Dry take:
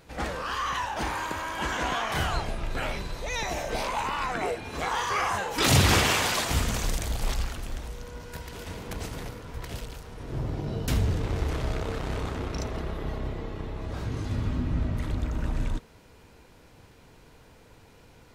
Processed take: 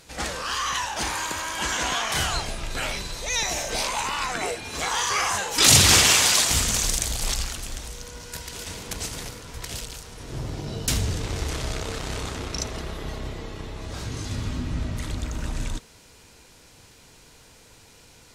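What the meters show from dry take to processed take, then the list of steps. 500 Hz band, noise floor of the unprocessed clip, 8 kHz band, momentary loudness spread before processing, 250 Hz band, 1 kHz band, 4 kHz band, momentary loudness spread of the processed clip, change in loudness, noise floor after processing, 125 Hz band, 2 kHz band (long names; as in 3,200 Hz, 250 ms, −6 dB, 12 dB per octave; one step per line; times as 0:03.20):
−0.5 dB, −54 dBFS, +13.0 dB, 14 LU, −1.0 dB, +1.0 dB, +9.0 dB, 18 LU, +6.0 dB, −52 dBFS, −1.0 dB, +4.0 dB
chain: parametric band 7,400 Hz +14.5 dB 2.5 octaves
level −1 dB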